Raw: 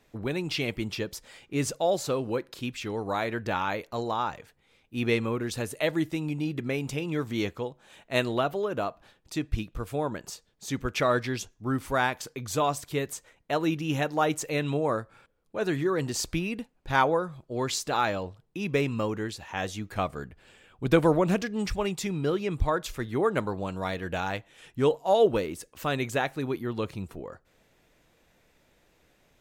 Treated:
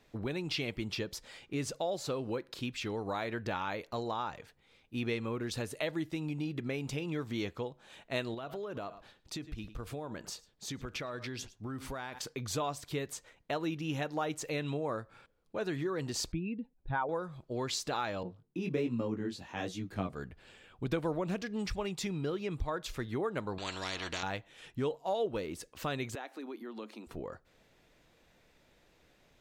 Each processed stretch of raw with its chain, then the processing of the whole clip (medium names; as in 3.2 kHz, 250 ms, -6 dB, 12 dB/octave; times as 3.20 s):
8.34–12.19 s: delay 106 ms -22 dB + compression 10:1, threshold -34 dBFS
16.32–17.09 s: spectral contrast enhancement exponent 1.7 + steep low-pass 4.8 kHz
18.23–20.13 s: peaking EQ 250 Hz +11.5 dB 1.7 oct + chorus 1.3 Hz, delay 16.5 ms, depth 5.5 ms + three bands expanded up and down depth 40%
23.58–24.23 s: distance through air 120 m + comb 3 ms, depth 39% + spectrum-flattening compressor 4:1
26.15–27.07 s: rippled Chebyshev high-pass 210 Hz, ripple 3 dB + compression 2.5:1, threshold -42 dBFS
whole clip: treble shelf 6.6 kHz -5.5 dB; compression 2.5:1, threshold -33 dBFS; peaking EQ 4.3 kHz +3.5 dB 0.92 oct; trim -1.5 dB